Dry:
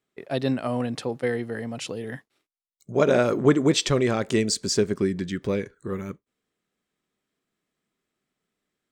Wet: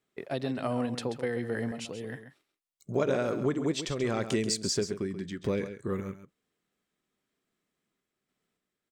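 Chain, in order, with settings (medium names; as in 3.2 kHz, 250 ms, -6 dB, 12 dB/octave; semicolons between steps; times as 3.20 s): compression 3:1, threshold -26 dBFS, peak gain reduction 10.5 dB; random-step tremolo; delay 134 ms -10.5 dB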